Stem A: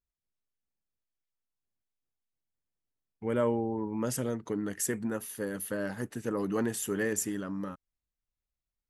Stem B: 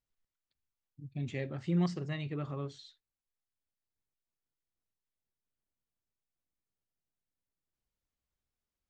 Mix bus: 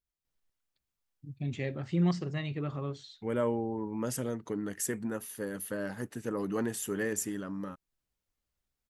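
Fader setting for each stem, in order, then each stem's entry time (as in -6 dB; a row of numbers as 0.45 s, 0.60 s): -2.0 dB, +2.5 dB; 0.00 s, 0.25 s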